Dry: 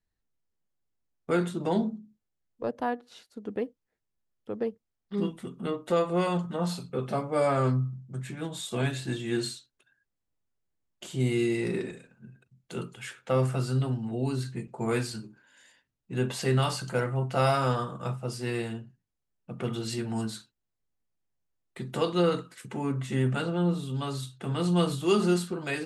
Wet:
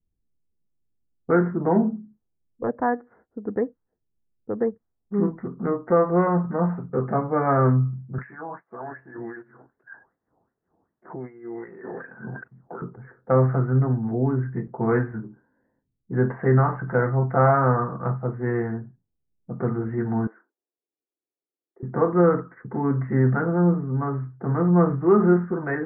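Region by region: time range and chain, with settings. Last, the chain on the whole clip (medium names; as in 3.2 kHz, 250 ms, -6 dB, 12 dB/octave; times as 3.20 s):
8.18–12.82 s: low-pass 8.7 kHz + wah-wah 2.6 Hz 770–3100 Hz, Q 3.9 + level flattener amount 100%
20.27–21.83 s: steep high-pass 320 Hz + compression 1.5:1, threshold -55 dBFS
whole clip: steep low-pass 1.9 kHz 72 dB/octave; band-stop 580 Hz, Q 12; level-controlled noise filter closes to 350 Hz, open at -27 dBFS; trim +7 dB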